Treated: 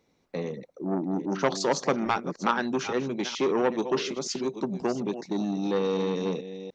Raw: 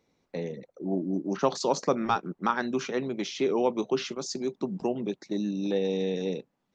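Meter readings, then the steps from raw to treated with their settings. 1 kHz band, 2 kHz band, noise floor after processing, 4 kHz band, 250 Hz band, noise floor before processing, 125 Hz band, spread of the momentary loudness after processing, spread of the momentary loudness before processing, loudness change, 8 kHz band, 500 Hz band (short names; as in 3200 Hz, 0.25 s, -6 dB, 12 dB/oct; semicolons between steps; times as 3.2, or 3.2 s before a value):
+1.0 dB, +3.5 dB, -69 dBFS, +2.5 dB, +1.0 dB, -77 dBFS, +1.5 dB, 8 LU, 9 LU, +1.0 dB, n/a, +1.0 dB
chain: reverse delay 0.419 s, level -12.5 dB; core saturation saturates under 1200 Hz; gain +2.5 dB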